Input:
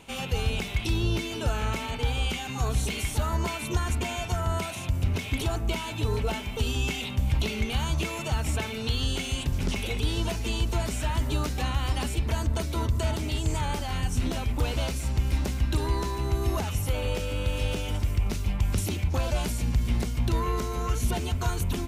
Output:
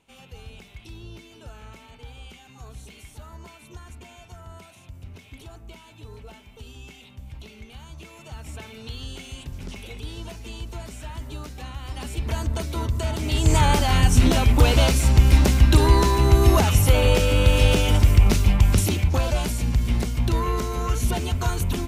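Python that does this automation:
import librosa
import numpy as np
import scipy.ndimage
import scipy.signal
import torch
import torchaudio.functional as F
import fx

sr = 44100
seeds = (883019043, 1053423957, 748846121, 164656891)

y = fx.gain(x, sr, db=fx.line((7.88, -15.0), (8.7, -8.0), (11.83, -8.0), (12.29, 1.0), (13.12, 1.0), (13.56, 11.0), (18.31, 11.0), (19.41, 3.5)))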